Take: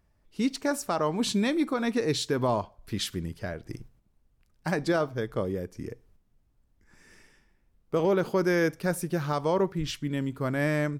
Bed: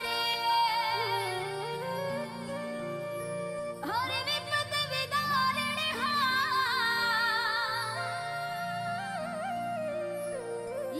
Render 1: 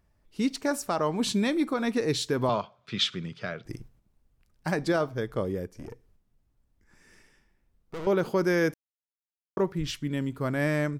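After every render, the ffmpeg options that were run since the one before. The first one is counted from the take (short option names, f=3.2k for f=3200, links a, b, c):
-filter_complex "[0:a]asettb=1/sr,asplit=3[a][b][c];[a]atrim=end=2.494[d];[b]atrim=start=2.49:end=3.65,asetpts=PTS-STARTPTS,afade=t=in:d=0.004:c=qsin,afade=t=out:st=1.156:d=0.004:c=qsin,highpass=f=130:w=0.5412,highpass=f=130:w=1.3066,equalizer=f=130:t=q:w=4:g=4,equalizer=f=300:t=q:w=4:g=-9,equalizer=f=890:t=q:w=4:g=-3,equalizer=f=1.3k:t=q:w=4:g=10,equalizer=f=2.4k:t=q:w=4:g=7,equalizer=f=3.5k:t=q:w=4:g=10,lowpass=f=6.5k:w=0.5412,lowpass=f=6.5k:w=1.3066[e];[c]atrim=start=3.646[f];[d][e]acrossfade=d=0.004:c1=hsin:c2=qsin[g];[g][f]acrossfade=d=0.004:c1=qsin:c2=hsin,asettb=1/sr,asplit=3[h][i][j];[h]atrim=end=5.674[k];[i]atrim=start=5.67:end=8.07,asetpts=PTS-STARTPTS,afade=t=in:d=0.004:c=qsin,afade=t=out:st=2.396:d=0.004:c=qsin,aeval=exprs='(tanh(50.1*val(0)+0.5)-tanh(0.5))/50.1':c=same[l];[j]atrim=start=8.066[m];[k][l]acrossfade=d=0.004:c1=hsin:c2=qsin[n];[n][m]acrossfade=d=0.004:c1=qsin:c2=hsin,asplit=3[o][p][q];[o]atrim=end=8.74,asetpts=PTS-STARTPTS,afade=t=out:st=8.736:d=0.004:c=hsin[r];[p]atrim=start=8.74:end=9.57,asetpts=PTS-STARTPTS,volume=0[s];[q]atrim=start=9.57,asetpts=PTS-STARTPTS,afade=t=in:d=0.004:c=hsin[t];[r][s][t]concat=n=3:v=0:a=1"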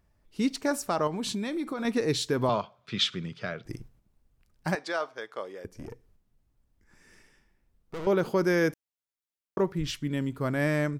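-filter_complex "[0:a]asettb=1/sr,asplit=3[a][b][c];[a]atrim=end=1.074[d];[b]atrim=start=1.07:end=1.85,asetpts=PTS-STARTPTS,afade=t=in:d=0.004:c=qsin,afade=t=out:st=0.776:d=0.004:c=qsin,acompressor=threshold=-28dB:ratio=6:attack=3.2:release=140:knee=1:detection=peak[e];[c]atrim=start=1.846[f];[d][e]acrossfade=d=0.004:c1=hsin:c2=qsin[g];[g][f]acrossfade=d=0.004:c1=qsin:c2=hsin,asettb=1/sr,asplit=3[h][i][j];[h]atrim=end=4.754[k];[i]atrim=start=4.75:end=5.65,asetpts=PTS-STARTPTS,afade=t=in:d=0.004:c=qsin,afade=t=out:st=0.896:d=0.004:c=qsin,highpass=710,lowpass=7k[l];[j]atrim=start=5.646[m];[k][l]acrossfade=d=0.004:c1=hsin:c2=qsin[n];[n][m]acrossfade=d=0.004:c1=qsin:c2=hsin"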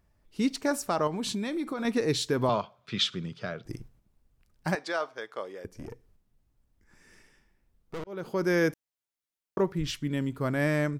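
-filter_complex "[0:a]asettb=1/sr,asplit=3[a][b][c];[a]atrim=end=3.024[d];[b]atrim=start=3.02:end=3.73,asetpts=PTS-STARTPTS,afade=t=in:d=0.004:c=qsin,afade=t=out:st=0.706:d=0.004:c=qsin,equalizer=f=2.1k:t=o:w=0.77:g=-5[e];[c]atrim=start=3.726[f];[d][e]acrossfade=d=0.004:c1=hsin:c2=qsin[g];[g][f]acrossfade=d=0.004:c1=qsin:c2=hsin,asplit=2[h][i];[h]atrim=end=8.04,asetpts=PTS-STARTPTS,afade=t=out:st=8.036:d=0.004:c=hsin[j];[i]atrim=start=8.04,asetpts=PTS-STARTPTS,afade=t=in:d=0.52[k];[j][k]concat=n=2:v=0:a=1"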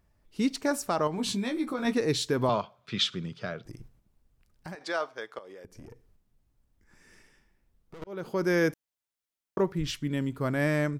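-filter_complex "[0:a]asettb=1/sr,asplit=3[a][b][c];[a]atrim=end=1.164[d];[b]atrim=start=1.16:end=1.94,asetpts=PTS-STARTPTS,afade=t=in:d=0.004:c=qsin,afade=t=out:st=0.776:d=0.004:c=qsin,asplit=2[e][f];[f]adelay=16,volume=-4dB[g];[e][g]amix=inputs=2:normalize=0,atrim=end_sample=34398[h];[c]atrim=start=1.936[i];[d][h]acrossfade=d=0.004:c1=hsin:c2=qsin[j];[j][i]acrossfade=d=0.004:c1=qsin:c2=hsin,asettb=1/sr,asplit=3[k][l][m];[k]atrim=end=3.654[n];[l]atrim=start=3.65:end=4.81,asetpts=PTS-STARTPTS,afade=t=in:d=0.004:c=qsin,afade=t=out:st=1.156:d=0.004:c=qsin,acompressor=threshold=-39dB:ratio=4:attack=3.2:release=140:knee=1:detection=peak[o];[m]atrim=start=4.806[p];[n][o]acrossfade=d=0.004:c1=hsin:c2=qsin[q];[q][p]acrossfade=d=0.004:c1=qsin:c2=hsin,asettb=1/sr,asplit=3[r][s][t];[r]atrim=end=5.384[u];[s]atrim=start=5.38:end=8.02,asetpts=PTS-STARTPTS,afade=t=in:d=0.004:c=qsin,afade=t=out:st=2.636:d=0.004:c=qsin,acompressor=threshold=-42dB:ratio=16:attack=3.2:release=140:knee=1:detection=peak[v];[t]atrim=start=8.016[w];[u][v]acrossfade=d=0.004:c1=hsin:c2=qsin[x];[x][w]acrossfade=d=0.004:c1=qsin:c2=hsin"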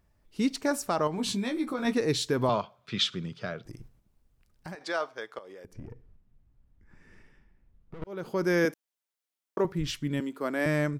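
-filter_complex "[0:a]asettb=1/sr,asplit=3[a][b][c];[a]atrim=end=5.734[d];[b]atrim=start=5.73:end=8.04,asetpts=PTS-STARTPTS,afade=t=in:d=0.004:c=qsin,afade=t=out:st=2.306:d=0.004:c=qsin,bass=f=250:g=7,treble=f=4k:g=-14[e];[c]atrim=start=8.036[f];[d][e]acrossfade=d=0.004:c1=hsin:c2=qsin[g];[g][f]acrossfade=d=0.004:c1=qsin:c2=hsin,asettb=1/sr,asplit=3[h][i][j];[h]atrim=end=8.654[k];[i]atrim=start=8.65:end=9.65,asetpts=PTS-STARTPTS,afade=t=in:d=0.004:c=qsin,afade=t=out:st=0.996:d=0.004:c=qsin,highpass=240[l];[j]atrim=start=9.646[m];[k][l]acrossfade=d=0.004:c1=hsin:c2=qsin[n];[n][m]acrossfade=d=0.004:c1=qsin:c2=hsin,asettb=1/sr,asplit=3[o][p][q];[o]atrim=end=10.204[r];[p]atrim=start=10.2:end=10.66,asetpts=PTS-STARTPTS,afade=t=in:d=0.004:c=qsin,afade=t=out:st=0.456:d=0.004:c=qsin,highpass=f=250:w=0.5412,highpass=f=250:w=1.3066[s];[q]atrim=start=10.656[t];[r][s]acrossfade=d=0.004:c1=hsin:c2=qsin[u];[u][t]acrossfade=d=0.004:c1=qsin:c2=hsin"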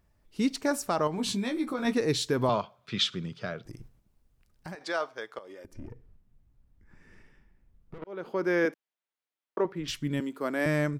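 -filter_complex "[0:a]asettb=1/sr,asplit=3[a][b][c];[a]atrim=end=5.474[d];[b]atrim=start=5.47:end=5.9,asetpts=PTS-STARTPTS,afade=t=in:d=0.004:c=qsin,afade=t=out:st=0.426:d=0.004:c=qsin,aecho=1:1:3.3:0.55,atrim=end_sample=18963[e];[c]atrim=start=5.896[f];[d][e]acrossfade=d=0.004:c1=hsin:c2=qsin[g];[g][f]acrossfade=d=0.004:c1=qsin:c2=hsin,asettb=1/sr,asplit=3[h][i][j];[h]atrim=end=7.984[k];[i]atrim=start=7.98:end=9.88,asetpts=PTS-STARTPTS,afade=t=in:d=0.004:c=qsin,afade=t=out:st=1.896:d=0.004:c=qsin,acrossover=split=210 3800:gain=0.158 1 0.224[l][m][n];[l][m][n]amix=inputs=3:normalize=0[o];[j]atrim=start=9.876[p];[k][o]acrossfade=d=0.004:c1=hsin:c2=qsin[q];[q][p]acrossfade=d=0.004:c1=qsin:c2=hsin"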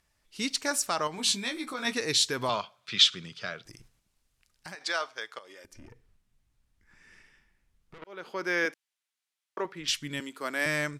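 -af "lowpass=11k,tiltshelf=f=1.1k:g=-9"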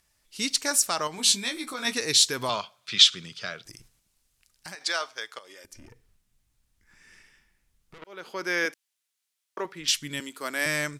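-af "highshelf=f=4k:g=9"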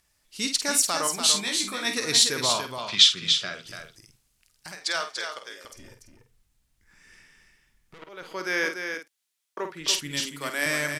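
-filter_complex "[0:a]asplit=2[a][b];[b]adelay=49,volume=-8dB[c];[a][c]amix=inputs=2:normalize=0,aecho=1:1:290:0.473"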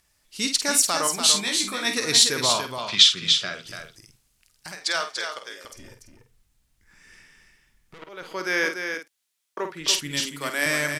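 -af "volume=2.5dB,alimiter=limit=-2dB:level=0:latency=1"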